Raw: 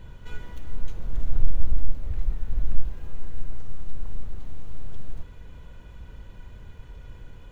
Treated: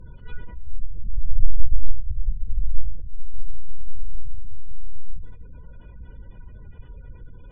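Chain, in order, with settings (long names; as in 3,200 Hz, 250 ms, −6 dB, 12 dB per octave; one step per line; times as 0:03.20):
gate on every frequency bin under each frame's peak −30 dB strong
treble cut that deepens with the level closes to 350 Hz, closed at −12 dBFS
four-comb reverb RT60 0.87 s, combs from 27 ms, DRR 19 dB
level +1.5 dB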